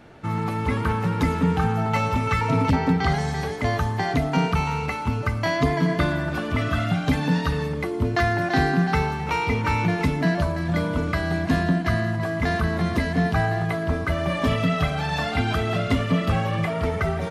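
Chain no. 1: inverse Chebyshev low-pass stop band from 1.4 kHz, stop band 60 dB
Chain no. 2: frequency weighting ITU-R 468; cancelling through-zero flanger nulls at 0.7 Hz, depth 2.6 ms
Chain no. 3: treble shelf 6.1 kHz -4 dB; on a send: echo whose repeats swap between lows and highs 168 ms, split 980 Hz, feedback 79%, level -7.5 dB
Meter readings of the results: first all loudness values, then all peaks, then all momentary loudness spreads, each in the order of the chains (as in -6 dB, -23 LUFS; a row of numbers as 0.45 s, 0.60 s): -26.0 LUFS, -27.0 LUFS, -22.5 LUFS; -11.0 dBFS, -10.5 dBFS, -8.0 dBFS; 5 LU, 6 LU, 4 LU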